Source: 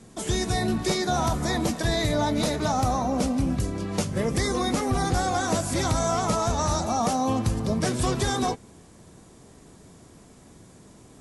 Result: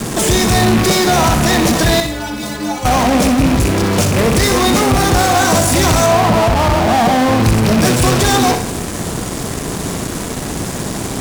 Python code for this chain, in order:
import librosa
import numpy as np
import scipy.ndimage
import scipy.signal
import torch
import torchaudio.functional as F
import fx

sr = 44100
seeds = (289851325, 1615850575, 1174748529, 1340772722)

p1 = fx.rattle_buzz(x, sr, strikes_db=-26.0, level_db=-27.0)
p2 = fx.steep_lowpass(p1, sr, hz=1200.0, slope=96, at=(6.06, 7.4))
p3 = fx.fuzz(p2, sr, gain_db=52.0, gate_db=-52.0)
p4 = p2 + (p3 * librosa.db_to_amplitude(-7.0))
p5 = fx.stiff_resonator(p4, sr, f0_hz=62.0, decay_s=0.49, stiffness=0.03, at=(2.0, 2.85))
p6 = p5 + fx.room_flutter(p5, sr, wall_m=10.8, rt60_s=0.44, dry=0)
y = p6 * librosa.db_to_amplitude(4.5)